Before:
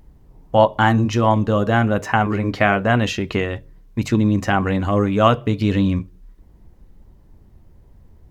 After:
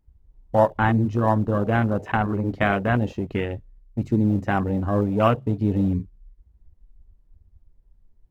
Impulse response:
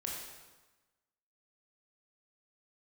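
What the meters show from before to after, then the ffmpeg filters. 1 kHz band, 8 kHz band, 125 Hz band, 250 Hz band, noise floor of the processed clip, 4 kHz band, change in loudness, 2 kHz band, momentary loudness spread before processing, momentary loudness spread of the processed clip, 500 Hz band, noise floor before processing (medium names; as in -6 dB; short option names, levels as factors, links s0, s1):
-5.5 dB, no reading, -3.0 dB, -3.5 dB, -60 dBFS, -12.0 dB, -4.0 dB, -6.0 dB, 7 LU, 8 LU, -4.5 dB, -50 dBFS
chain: -filter_complex "[0:a]asplit=2[s0][s1];[s1]acrusher=samples=39:mix=1:aa=0.000001:lfo=1:lforange=39:lforate=2.8,volume=0.316[s2];[s0][s2]amix=inputs=2:normalize=0,afwtdn=0.0631,volume=0.531"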